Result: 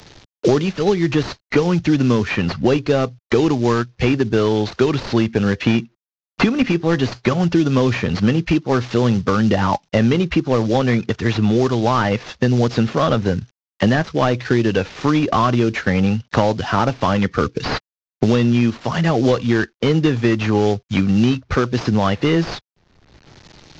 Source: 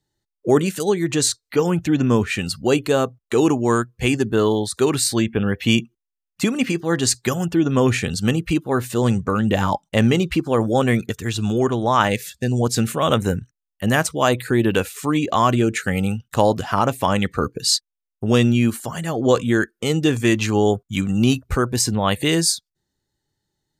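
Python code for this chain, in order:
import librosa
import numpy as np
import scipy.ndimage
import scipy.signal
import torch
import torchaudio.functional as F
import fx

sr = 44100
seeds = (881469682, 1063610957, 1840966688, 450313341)

y = fx.cvsd(x, sr, bps=32000)
y = fx.band_squash(y, sr, depth_pct=100)
y = y * librosa.db_to_amplitude(2.0)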